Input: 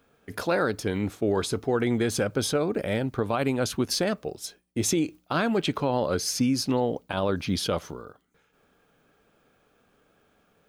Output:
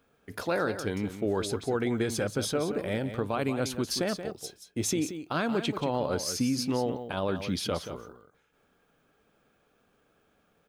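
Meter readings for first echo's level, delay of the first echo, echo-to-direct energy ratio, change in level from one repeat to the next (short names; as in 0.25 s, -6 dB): -10.0 dB, 0.179 s, -10.0 dB, no steady repeat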